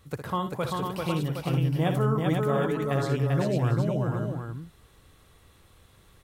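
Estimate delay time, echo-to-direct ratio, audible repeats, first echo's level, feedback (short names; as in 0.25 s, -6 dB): 60 ms, 1.0 dB, 5, -9.0 dB, no steady repeat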